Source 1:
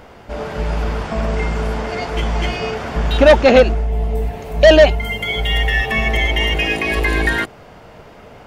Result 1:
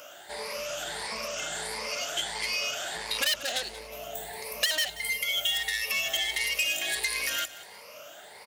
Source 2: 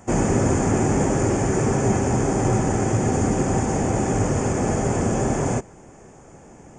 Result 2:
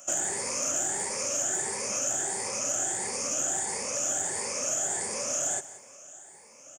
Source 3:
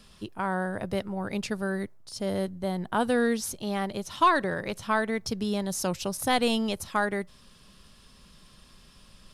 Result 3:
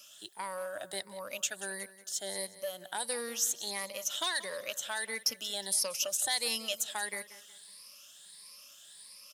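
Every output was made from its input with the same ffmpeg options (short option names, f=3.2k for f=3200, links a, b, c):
-filter_complex "[0:a]afftfilt=real='re*pow(10,14/40*sin(2*PI*(0.89*log(max(b,1)*sr/1024/100)/log(2)-(1.5)*(pts-256)/sr)))':imag='im*pow(10,14/40*sin(2*PI*(0.89*log(max(b,1)*sr/1024/100)/log(2)-(1.5)*(pts-256)/sr)))':win_size=1024:overlap=0.75,equalizer=f=580:w=5.3:g=11,acontrast=68,aderivative,acrossover=split=140|2900|7800[a][b][c][d];[a]acompressor=threshold=-55dB:ratio=4[e];[b]acompressor=threshold=-35dB:ratio=4[f];[c]acompressor=threshold=-30dB:ratio=4[g];[d]acompressor=threshold=-36dB:ratio=4[h];[e][f][g][h]amix=inputs=4:normalize=0,asplit=2[i][j];[j]aecho=0:1:182|364|546:0.15|0.0509|0.0173[k];[i][k]amix=inputs=2:normalize=0"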